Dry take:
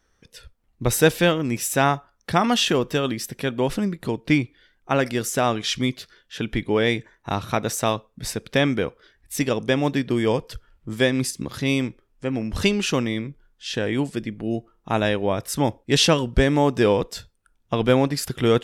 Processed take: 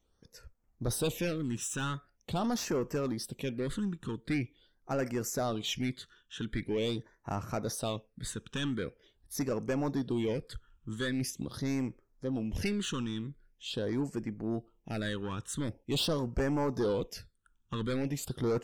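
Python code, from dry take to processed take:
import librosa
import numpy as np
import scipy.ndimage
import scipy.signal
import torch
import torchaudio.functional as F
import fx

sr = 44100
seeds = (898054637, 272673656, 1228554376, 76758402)

y = 10.0 ** (-19.5 / 20.0) * np.tanh(x / 10.0 ** (-19.5 / 20.0))
y = fx.phaser_stages(y, sr, stages=8, low_hz=620.0, high_hz=3700.0, hz=0.44, feedback_pct=5)
y = y * 10.0 ** (-6.0 / 20.0)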